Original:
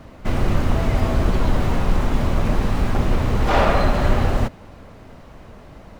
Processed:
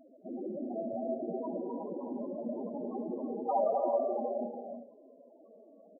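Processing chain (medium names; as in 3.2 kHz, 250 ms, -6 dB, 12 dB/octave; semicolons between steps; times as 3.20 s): Butterworth band-pass 630 Hz, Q 0.53; loudest bins only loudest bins 4; feedback delay 76 ms, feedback 34%, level -19 dB; gated-style reverb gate 390 ms rising, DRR 4.5 dB; trim -5 dB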